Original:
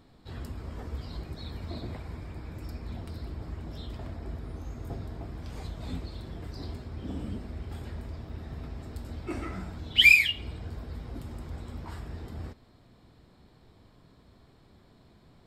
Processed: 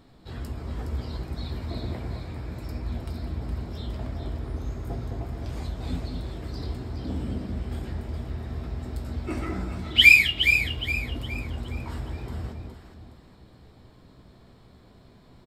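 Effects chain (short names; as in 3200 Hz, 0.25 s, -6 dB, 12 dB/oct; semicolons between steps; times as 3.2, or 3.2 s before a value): doubler 16 ms -11 dB; on a send: echo with dull and thin repeats by turns 0.208 s, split 810 Hz, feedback 60%, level -3 dB; on the sum: gain +3 dB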